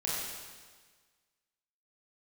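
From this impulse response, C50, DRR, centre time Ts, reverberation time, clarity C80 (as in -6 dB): -1.5 dB, -7.0 dB, 0.104 s, 1.5 s, 0.5 dB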